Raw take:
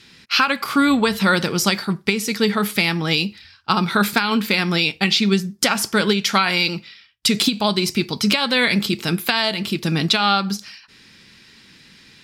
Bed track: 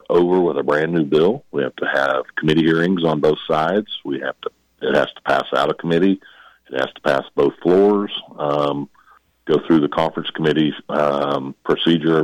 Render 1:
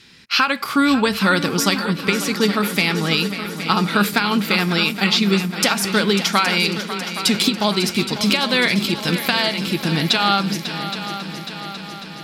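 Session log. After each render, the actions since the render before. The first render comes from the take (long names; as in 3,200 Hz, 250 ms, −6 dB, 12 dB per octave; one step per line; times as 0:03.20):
echo machine with several playback heads 273 ms, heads second and third, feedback 64%, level −12 dB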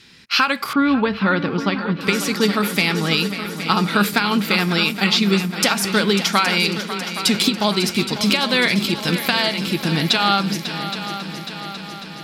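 0:00.73–0:02.01: high-frequency loss of the air 330 metres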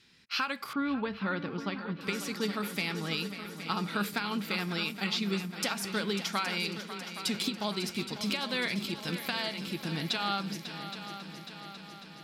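level −14.5 dB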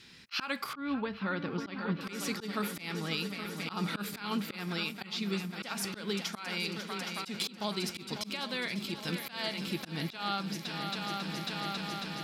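volume swells 168 ms
speech leveller 0.5 s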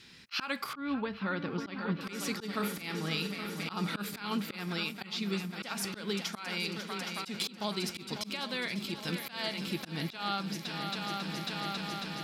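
0:02.50–0:03.68: flutter between parallel walls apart 7.6 metres, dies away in 0.3 s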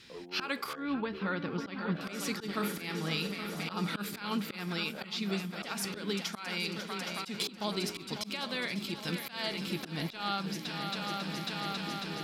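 mix in bed track −32 dB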